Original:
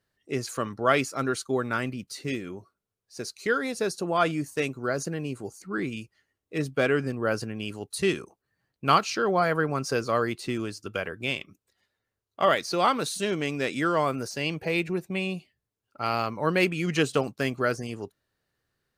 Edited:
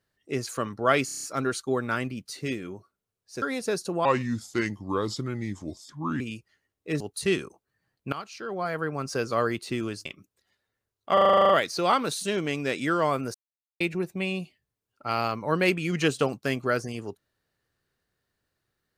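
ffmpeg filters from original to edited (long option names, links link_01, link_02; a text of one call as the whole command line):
ffmpeg -i in.wav -filter_complex "[0:a]asplit=24[link_01][link_02][link_03][link_04][link_05][link_06][link_07][link_08][link_09][link_10][link_11][link_12][link_13][link_14][link_15][link_16][link_17][link_18][link_19][link_20][link_21][link_22][link_23][link_24];[link_01]atrim=end=1.082[link_25];[link_02]atrim=start=1.048:end=1.082[link_26];[link_03]atrim=start=1.048:end=1.082[link_27];[link_04]atrim=start=1.048:end=1.082[link_28];[link_05]atrim=start=1.048:end=1.082[link_29];[link_06]atrim=start=1.048:end=1.082[link_30];[link_07]atrim=start=1.048:end=3.242[link_31];[link_08]atrim=start=3.548:end=4.184[link_32];[link_09]atrim=start=4.18:end=5.86,asetpts=PTS-STARTPTS,asetrate=34398,aresample=44100[link_33];[link_10]atrim=start=5.856:end=6.662[link_34];[link_11]atrim=start=7.768:end=8.89,asetpts=PTS-STARTPTS,afade=type=out:start_time=1.118:duration=0.004:curve=hsin:silence=0.1[link_35];[link_12]atrim=start=8.89:end=10.822,asetpts=PTS-STARTPTS,afade=type=in:duration=1.31:silence=0.1[link_36];[link_13]atrim=start=11.358:end=12.482[link_37];[link_14]atrim=start=12.438:end=12.482[link_38];[link_15]atrim=start=12.438:end=12.482[link_39];[link_16]atrim=start=12.438:end=12.482[link_40];[link_17]atrim=start=12.438:end=12.482[link_41];[link_18]atrim=start=12.438:end=12.482[link_42];[link_19]atrim=start=12.438:end=12.482[link_43];[link_20]atrim=start=12.438:end=12.482[link_44];[link_21]atrim=start=12.438:end=12.482[link_45];[link_22]atrim=start=12.438:end=14.29,asetpts=PTS-STARTPTS,afade=type=out:start_time=1.848:duration=0.004:curve=hsin[link_46];[link_23]atrim=start=14.29:end=14.75,asetpts=PTS-STARTPTS,volume=0[link_47];[link_24]atrim=start=14.75,asetpts=PTS-STARTPTS,afade=type=in:duration=0.004:curve=hsin[link_48];[link_25][link_26]acrossfade=duration=0.004:curve1=hsin:curve2=hsin[link_49];[link_49][link_27]acrossfade=duration=0.004:curve1=hsin:curve2=hsin[link_50];[link_50][link_28]acrossfade=duration=0.004:curve1=hsin:curve2=hsin[link_51];[link_51][link_29]acrossfade=duration=0.004:curve1=hsin:curve2=hsin[link_52];[link_52][link_30]acrossfade=duration=0.004:curve1=hsin:curve2=hsin[link_53];[link_53][link_31]acrossfade=duration=0.004:curve1=hsin:curve2=hsin[link_54];[link_54][link_32]acrossfade=duration=0.004:curve1=hsin:curve2=hsin[link_55];[link_55][link_33]acrossfade=duration=0.004:curve1=hsin:curve2=hsin[link_56];[link_56][link_34]acrossfade=duration=0.004:curve1=hsin:curve2=hsin[link_57];[link_35][link_36]concat=n=2:v=0:a=1[link_58];[link_57][link_58]acrossfade=duration=0.004:curve1=hsin:curve2=hsin[link_59];[link_59][link_37]acrossfade=duration=0.004:curve1=hsin:curve2=hsin[link_60];[link_60][link_38]acrossfade=duration=0.004:curve1=hsin:curve2=hsin[link_61];[link_61][link_39]acrossfade=duration=0.004:curve1=hsin:curve2=hsin[link_62];[link_62][link_40]acrossfade=duration=0.004:curve1=hsin:curve2=hsin[link_63];[link_63][link_41]acrossfade=duration=0.004:curve1=hsin:curve2=hsin[link_64];[link_64][link_42]acrossfade=duration=0.004:curve1=hsin:curve2=hsin[link_65];[link_65][link_43]acrossfade=duration=0.004:curve1=hsin:curve2=hsin[link_66];[link_66][link_44]acrossfade=duration=0.004:curve1=hsin:curve2=hsin[link_67];[link_67][link_45]acrossfade=duration=0.004:curve1=hsin:curve2=hsin[link_68];[link_46][link_47][link_48]concat=n=3:v=0:a=1[link_69];[link_68][link_69]acrossfade=duration=0.004:curve1=hsin:curve2=hsin" out.wav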